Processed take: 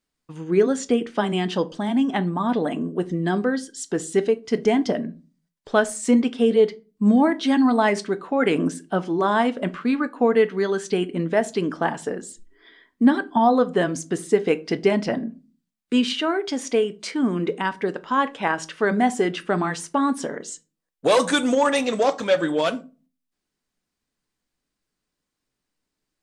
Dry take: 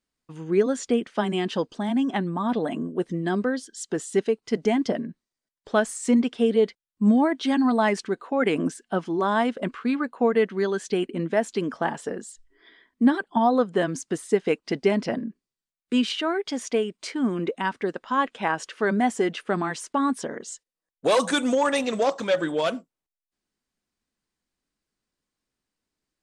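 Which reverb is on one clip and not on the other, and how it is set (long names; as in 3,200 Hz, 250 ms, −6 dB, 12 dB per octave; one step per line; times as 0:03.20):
rectangular room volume 150 cubic metres, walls furnished, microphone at 0.39 metres
level +2.5 dB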